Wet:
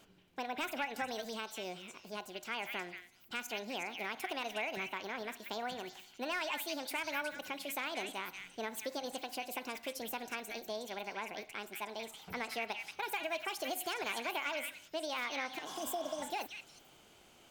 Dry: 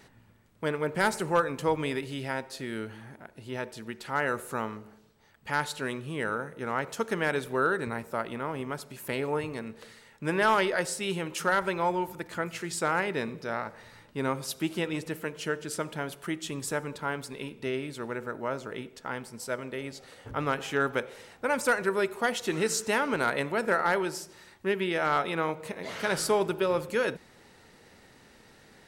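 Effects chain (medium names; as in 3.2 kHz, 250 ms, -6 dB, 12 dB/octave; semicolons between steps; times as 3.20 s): spectral replace 25.90–26.74 s, 470–2900 Hz before; compression 2.5:1, threshold -30 dBFS, peak gain reduction 7.5 dB; repeats whose band climbs or falls 300 ms, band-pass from 1.6 kHz, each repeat 1.4 oct, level -2 dB; wide varispeed 1.65×; trim -6.5 dB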